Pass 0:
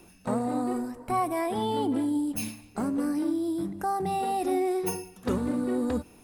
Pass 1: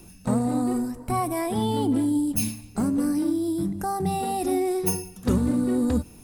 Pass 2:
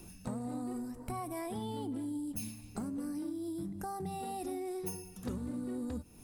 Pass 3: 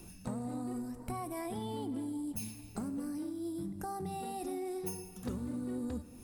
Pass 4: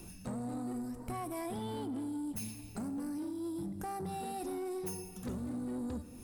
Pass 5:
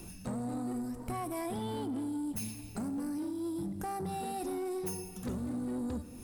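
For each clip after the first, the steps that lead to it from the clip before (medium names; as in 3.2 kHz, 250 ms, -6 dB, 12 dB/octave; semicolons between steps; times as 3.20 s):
tone controls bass +11 dB, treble +8 dB
compression 3:1, threshold -36 dBFS, peak gain reduction 14 dB; trim -4 dB
plate-style reverb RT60 2.8 s, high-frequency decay 0.8×, DRR 13.5 dB
saturation -35 dBFS, distortion -16 dB; trim +2 dB
crackle 78 per s -56 dBFS; trim +2.5 dB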